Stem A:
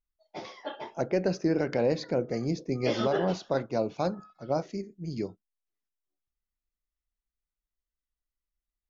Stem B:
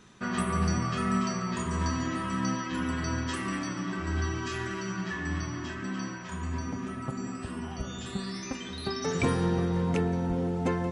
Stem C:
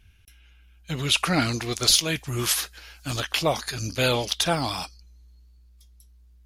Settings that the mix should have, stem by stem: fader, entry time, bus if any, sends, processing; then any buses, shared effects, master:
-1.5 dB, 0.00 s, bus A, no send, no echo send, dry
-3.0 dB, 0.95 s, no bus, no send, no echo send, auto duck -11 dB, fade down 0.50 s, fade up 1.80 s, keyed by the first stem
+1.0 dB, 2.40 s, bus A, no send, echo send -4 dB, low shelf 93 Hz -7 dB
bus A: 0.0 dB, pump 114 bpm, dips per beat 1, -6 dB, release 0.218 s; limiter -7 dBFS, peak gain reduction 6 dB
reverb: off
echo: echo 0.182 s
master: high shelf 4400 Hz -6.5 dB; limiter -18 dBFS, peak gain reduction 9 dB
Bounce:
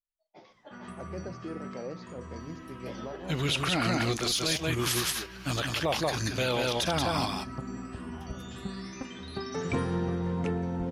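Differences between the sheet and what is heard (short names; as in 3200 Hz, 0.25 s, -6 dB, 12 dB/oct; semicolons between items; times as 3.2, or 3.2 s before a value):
stem A -1.5 dB -> -13.0 dB; stem B: entry 0.95 s -> 0.50 s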